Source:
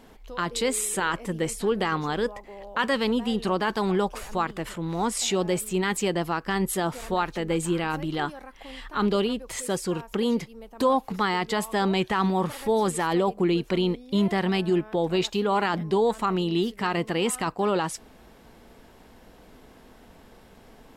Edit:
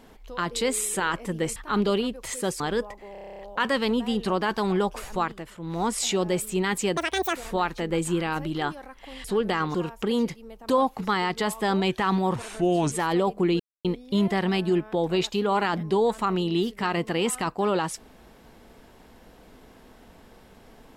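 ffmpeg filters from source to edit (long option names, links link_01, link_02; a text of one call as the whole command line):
ffmpeg -i in.wav -filter_complex "[0:a]asplit=22[link_01][link_02][link_03][link_04][link_05][link_06][link_07][link_08][link_09][link_10][link_11][link_12][link_13][link_14][link_15][link_16][link_17][link_18][link_19][link_20][link_21][link_22];[link_01]atrim=end=1.562[link_23];[link_02]atrim=start=8.818:end=9.862[link_24];[link_03]atrim=start=2.058:end=2.612[link_25];[link_04]atrim=start=2.578:end=2.612[link_26];[link_05]atrim=start=2.578:end=2.612[link_27];[link_06]atrim=start=2.578:end=2.612[link_28];[link_07]atrim=start=2.578:end=2.612[link_29];[link_08]atrim=start=2.578:end=2.612[link_30];[link_09]atrim=start=2.578:end=2.612[link_31];[link_10]atrim=start=2.578:end=2.612[link_32];[link_11]atrim=start=2.578:end=2.612[link_33];[link_12]atrim=start=2.578:end=4.67,asetpts=PTS-STARTPTS,afade=type=out:start_time=1.852:duration=0.24:silence=0.316228[link_34];[link_13]atrim=start=4.67:end=4.73,asetpts=PTS-STARTPTS,volume=-10dB[link_35];[link_14]atrim=start=4.73:end=6.164,asetpts=PTS-STARTPTS,afade=type=in:duration=0.24:silence=0.316228[link_36];[link_15]atrim=start=6.16:end=6.94,asetpts=PTS-STARTPTS,asetrate=87318,aresample=44100[link_37];[link_16]atrim=start=6.936:end=8.822[link_38];[link_17]atrim=start=1.558:end=2.062[link_39];[link_18]atrim=start=9.858:end=12.474[link_40];[link_19]atrim=start=12.47:end=12.92,asetpts=PTS-STARTPTS,asetrate=35280,aresample=44100,atrim=end_sample=24806,asetpts=PTS-STARTPTS[link_41];[link_20]atrim=start=12.916:end=13.6,asetpts=PTS-STARTPTS,afade=type=out:start_time=0.68:duration=0.004:curve=hsin[link_42];[link_21]atrim=start=13.6:end=13.85,asetpts=PTS-STARTPTS,volume=0[link_43];[link_22]atrim=start=13.85,asetpts=PTS-STARTPTS,afade=type=in:duration=0.004:curve=hsin[link_44];[link_23][link_24]acrossfade=duration=0.004:curve1=hsin:curve2=hsin[link_45];[link_45][link_25]acrossfade=duration=0.004:curve1=hsin:curve2=hsin[link_46];[link_46][link_26]acrossfade=duration=0.004:curve1=hsin:curve2=hsin[link_47];[link_47][link_27]acrossfade=duration=0.004:curve1=hsin:curve2=hsin[link_48];[link_48][link_28]acrossfade=duration=0.004:curve1=hsin:curve2=hsin[link_49];[link_49][link_29]acrossfade=duration=0.004:curve1=hsin:curve2=hsin[link_50];[link_50][link_30]acrossfade=duration=0.004:curve1=hsin:curve2=hsin[link_51];[link_51][link_31]acrossfade=duration=0.004:curve1=hsin:curve2=hsin[link_52];[link_52][link_32]acrossfade=duration=0.004:curve1=hsin:curve2=hsin[link_53];[link_53][link_33]acrossfade=duration=0.004:curve1=hsin:curve2=hsin[link_54];[link_34][link_35][link_36]concat=n=3:v=0:a=1[link_55];[link_54][link_55]acrossfade=duration=0.004:curve1=hsin:curve2=hsin[link_56];[link_56][link_37]acrossfade=duration=0.004:curve1=hsin:curve2=hsin[link_57];[link_57][link_38]acrossfade=duration=0.004:curve1=hsin:curve2=hsin[link_58];[link_58][link_39]acrossfade=duration=0.004:curve1=hsin:curve2=hsin[link_59];[link_59][link_40]acrossfade=duration=0.004:curve1=hsin:curve2=hsin[link_60];[link_60][link_41]acrossfade=duration=0.004:curve1=hsin:curve2=hsin[link_61];[link_42][link_43][link_44]concat=n=3:v=0:a=1[link_62];[link_61][link_62]acrossfade=duration=0.004:curve1=hsin:curve2=hsin" out.wav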